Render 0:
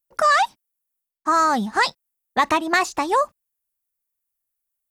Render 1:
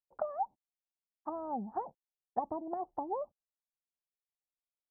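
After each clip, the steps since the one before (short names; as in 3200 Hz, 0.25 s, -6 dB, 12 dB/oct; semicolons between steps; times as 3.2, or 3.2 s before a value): treble ducked by the level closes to 560 Hz, closed at -19 dBFS; ladder low-pass 920 Hz, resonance 60%; gain -5.5 dB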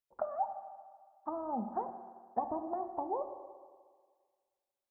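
reverb RT60 1.7 s, pre-delay 4 ms, DRR 6.5 dB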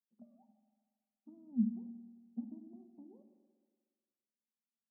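Butterworth band-pass 220 Hz, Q 4.8; gain +9 dB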